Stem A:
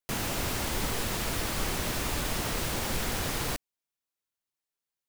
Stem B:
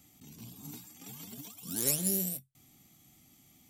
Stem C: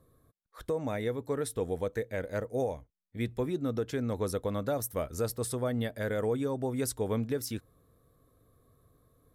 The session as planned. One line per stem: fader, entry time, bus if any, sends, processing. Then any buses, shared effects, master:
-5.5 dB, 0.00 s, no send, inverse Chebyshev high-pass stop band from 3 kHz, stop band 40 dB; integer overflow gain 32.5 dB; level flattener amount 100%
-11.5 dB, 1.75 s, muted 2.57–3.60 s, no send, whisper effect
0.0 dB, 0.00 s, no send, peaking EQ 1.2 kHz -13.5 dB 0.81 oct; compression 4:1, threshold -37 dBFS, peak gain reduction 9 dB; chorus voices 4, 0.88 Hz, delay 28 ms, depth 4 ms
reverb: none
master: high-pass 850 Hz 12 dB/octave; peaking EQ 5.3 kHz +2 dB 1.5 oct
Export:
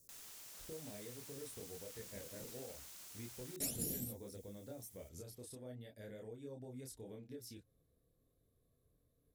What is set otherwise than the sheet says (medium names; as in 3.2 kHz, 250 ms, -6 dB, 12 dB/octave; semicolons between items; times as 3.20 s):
stem A -5.5 dB -> -16.5 dB; stem C 0.0 dB -> -8.5 dB; master: missing high-pass 850 Hz 12 dB/octave